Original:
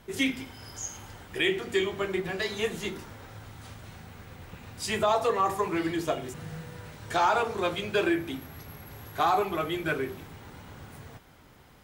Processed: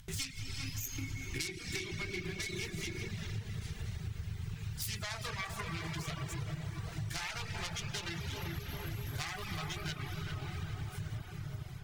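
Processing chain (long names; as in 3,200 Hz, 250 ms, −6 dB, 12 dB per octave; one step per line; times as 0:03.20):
phase distortion by the signal itself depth 0.25 ms
tape delay 389 ms, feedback 72%, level −5 dB, low-pass 1,400 Hz
noise gate −48 dBFS, range −28 dB
drawn EQ curve 140 Hz 0 dB, 240 Hz −22 dB, 530 Hz −27 dB, 5,900 Hz +3 dB
comb and all-pass reverb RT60 4.7 s, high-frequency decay 0.75×, pre-delay 35 ms, DRR 4 dB
reverb reduction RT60 0.64 s
high-shelf EQ 4,300 Hz −11.5 dB
upward compression, threshold −52 dBFS
0:00.98–0:03.08: hollow resonant body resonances 320/2,200 Hz, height 16 dB, ringing for 45 ms
downward compressor 10 to 1, threshold −47 dBFS, peak gain reduction 17 dB
level +11.5 dB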